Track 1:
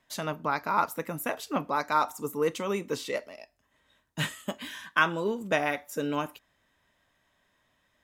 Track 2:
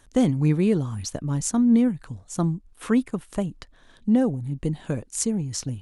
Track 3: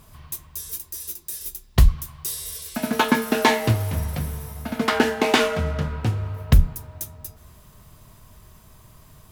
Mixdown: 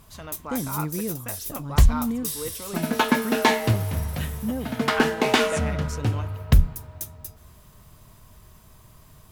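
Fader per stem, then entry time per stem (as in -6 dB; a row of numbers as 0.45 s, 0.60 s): -7.5 dB, -9.5 dB, -1.5 dB; 0.00 s, 0.35 s, 0.00 s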